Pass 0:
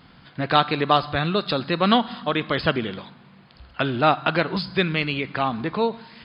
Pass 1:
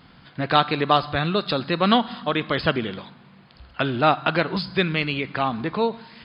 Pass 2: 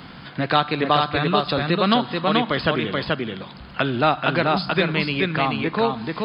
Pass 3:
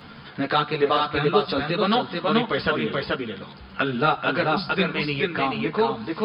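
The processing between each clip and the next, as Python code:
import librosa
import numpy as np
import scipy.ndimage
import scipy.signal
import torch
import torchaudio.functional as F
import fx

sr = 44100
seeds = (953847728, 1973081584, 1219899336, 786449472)

y1 = x
y2 = y1 + 10.0 ** (-3.5 / 20.0) * np.pad(y1, (int(432 * sr / 1000.0), 0))[:len(y1)]
y2 = fx.band_squash(y2, sr, depth_pct=40)
y3 = fx.small_body(y2, sr, hz=(440.0, 1400.0), ring_ms=45, db=6)
y3 = fx.ensemble(y3, sr)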